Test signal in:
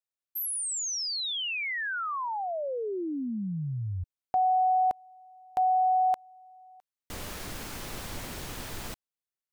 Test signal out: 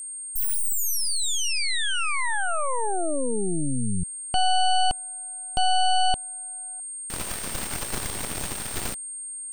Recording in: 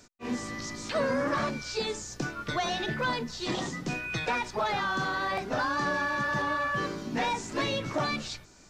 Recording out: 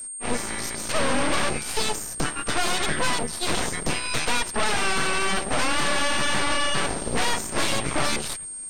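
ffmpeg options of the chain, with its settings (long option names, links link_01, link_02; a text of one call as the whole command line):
ffmpeg -i in.wav -af "aeval=exprs='0.133*(cos(1*acos(clip(val(0)/0.133,-1,1)))-cos(1*PI/2))+0.0376*(cos(4*acos(clip(val(0)/0.133,-1,1)))-cos(4*PI/2))+0.0473*(cos(8*acos(clip(val(0)/0.133,-1,1)))-cos(8*PI/2))':channel_layout=same,aeval=exprs='val(0)+0.0224*sin(2*PI*8600*n/s)':channel_layout=same" out.wav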